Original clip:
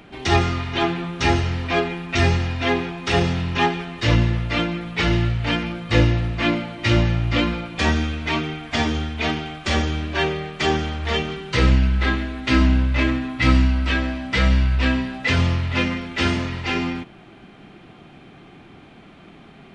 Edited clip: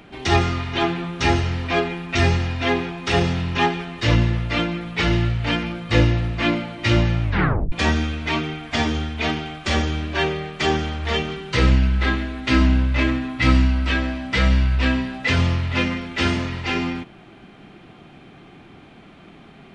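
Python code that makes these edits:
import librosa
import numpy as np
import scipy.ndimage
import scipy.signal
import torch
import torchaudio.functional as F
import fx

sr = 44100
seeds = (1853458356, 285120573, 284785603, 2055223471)

y = fx.edit(x, sr, fx.tape_stop(start_s=7.23, length_s=0.49), tone=tone)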